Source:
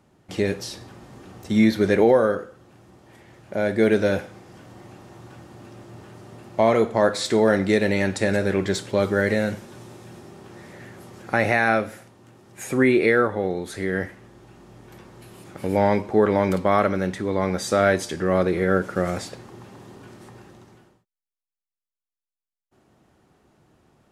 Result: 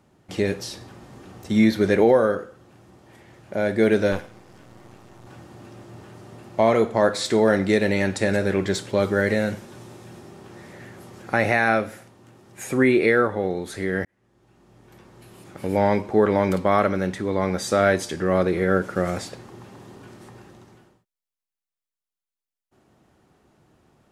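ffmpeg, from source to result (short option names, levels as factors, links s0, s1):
-filter_complex "[0:a]asettb=1/sr,asplit=3[s0][s1][s2];[s0]atrim=end=4.124[s3];[s1]atrim=start=4.12:end=5.27,asetpts=PTS-STARTPTS,afade=t=in:d=0.004:c=qsin,afade=t=out:st=1.146:d=0.004:c=qsin,aeval=exprs='if(lt(val(0),0),0.251*val(0),val(0))':c=same[s4];[s2]atrim=start=5.266[s5];[s3][s4]acrossfade=d=0.004:c1=hsin:c2=qsin[s6];[s6][s5]acrossfade=d=0.004:c1=qsin:c2=hsin,asplit=2[s7][s8];[s7]atrim=end=14.05,asetpts=PTS-STARTPTS,afade=t=out:st=14.046:d=0.004:c=hsin[s9];[s8]atrim=start=14.05,asetpts=PTS-STARTPTS,afade=t=in:d=2.25:c=qsin[s10];[s9][s10]concat=n=2:v=0:a=1"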